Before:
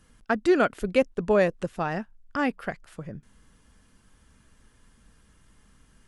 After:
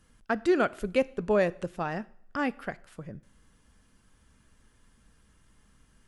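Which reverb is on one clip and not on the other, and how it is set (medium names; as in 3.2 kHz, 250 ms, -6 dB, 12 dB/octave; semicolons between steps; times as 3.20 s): two-slope reverb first 0.56 s, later 2 s, from -25 dB, DRR 18 dB; trim -3.5 dB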